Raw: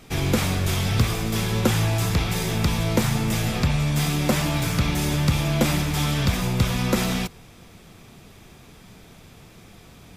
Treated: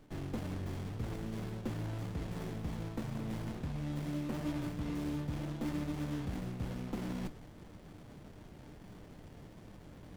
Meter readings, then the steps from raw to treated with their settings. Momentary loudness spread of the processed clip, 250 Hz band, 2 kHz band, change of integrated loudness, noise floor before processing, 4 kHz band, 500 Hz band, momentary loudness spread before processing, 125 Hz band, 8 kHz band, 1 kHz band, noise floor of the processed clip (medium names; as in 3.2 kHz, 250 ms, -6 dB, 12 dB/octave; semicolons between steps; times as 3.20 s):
16 LU, -13.5 dB, -22.0 dB, -16.5 dB, -48 dBFS, -25.0 dB, -16.5 dB, 2 LU, -17.0 dB, -26.5 dB, -19.0 dB, -54 dBFS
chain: dynamic bell 280 Hz, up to +5 dB, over -37 dBFS, Q 1.3; reverse; compression 5:1, threshold -33 dBFS, peak gain reduction 19 dB; reverse; feedback comb 300 Hz, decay 0.16 s, harmonics all, mix 70%; sliding maximum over 33 samples; trim +4.5 dB